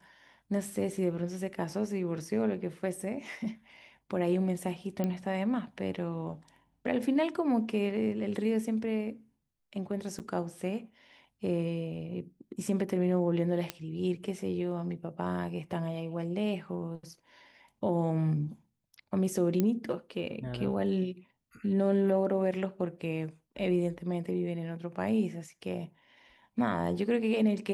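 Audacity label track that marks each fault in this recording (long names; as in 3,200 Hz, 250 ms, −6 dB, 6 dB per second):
5.040000	5.040000	click −19 dBFS
10.190000	10.200000	drop-out 8.5 ms
13.700000	13.700000	click −16 dBFS
19.600000	19.600000	click −15 dBFS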